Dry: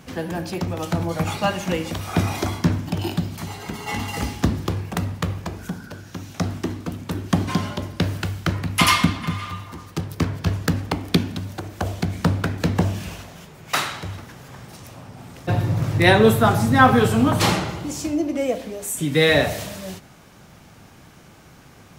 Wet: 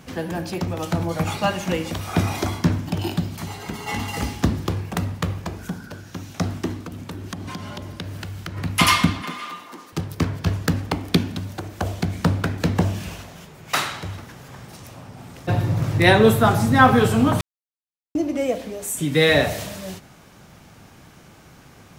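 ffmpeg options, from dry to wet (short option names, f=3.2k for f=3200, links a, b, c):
-filter_complex "[0:a]asplit=3[a][b][c];[a]afade=t=out:st=6.83:d=0.02[d];[b]acompressor=threshold=-29dB:ratio=5:attack=3.2:release=140:knee=1:detection=peak,afade=t=in:st=6.83:d=0.02,afade=t=out:st=8.56:d=0.02[e];[c]afade=t=in:st=8.56:d=0.02[f];[d][e][f]amix=inputs=3:normalize=0,asettb=1/sr,asplit=3[g][h][i];[g]atrim=end=9.224[j];[h]atrim=start=9.22:end=9.93,asetpts=PTS-STARTPTS,afade=t=in:d=0.004:c=qsin,afade=t=out:st=0.706:d=0.004:c=qsin,highpass=f=240:w=0.5412,highpass=f=240:w=1.3066[k];[i]atrim=start=9.926[l];[j][k]acrossfade=d=0.004:c1=hsin:c2=qsin[m];[m][l]acrossfade=d=0.004:c1=qsin:c2=hsin,asplit=3[n][o][p];[n]atrim=end=17.41,asetpts=PTS-STARTPTS,afade=t=out:st=17.406:d=0.004:c=hsin[q];[o]atrim=start=17.41:end=18.15,asetpts=PTS-STARTPTS,volume=0[r];[p]atrim=start=18.15,asetpts=PTS-STARTPTS,afade=t=in:d=0.004:c=hsin[s];[q][r][s]concat=n=3:v=0:a=1"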